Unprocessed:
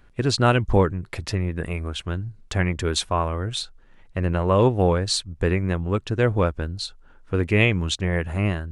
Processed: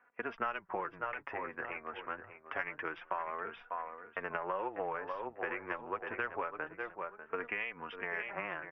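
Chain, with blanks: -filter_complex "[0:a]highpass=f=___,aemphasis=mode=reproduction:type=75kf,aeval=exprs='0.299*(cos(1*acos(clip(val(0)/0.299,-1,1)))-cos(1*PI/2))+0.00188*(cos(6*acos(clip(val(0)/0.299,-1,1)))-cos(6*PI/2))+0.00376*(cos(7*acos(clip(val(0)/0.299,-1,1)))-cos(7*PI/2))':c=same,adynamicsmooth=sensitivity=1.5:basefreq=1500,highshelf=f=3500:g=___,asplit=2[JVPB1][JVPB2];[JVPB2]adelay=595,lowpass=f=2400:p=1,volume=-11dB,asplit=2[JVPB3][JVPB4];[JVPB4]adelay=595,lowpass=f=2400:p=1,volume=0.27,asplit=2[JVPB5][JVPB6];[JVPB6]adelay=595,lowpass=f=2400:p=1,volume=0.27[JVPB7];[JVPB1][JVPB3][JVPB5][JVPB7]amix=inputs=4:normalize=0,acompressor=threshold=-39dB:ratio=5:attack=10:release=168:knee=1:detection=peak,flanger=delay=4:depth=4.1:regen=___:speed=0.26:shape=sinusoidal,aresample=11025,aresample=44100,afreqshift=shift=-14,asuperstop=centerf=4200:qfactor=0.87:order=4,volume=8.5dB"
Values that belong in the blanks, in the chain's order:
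1100, 9, 30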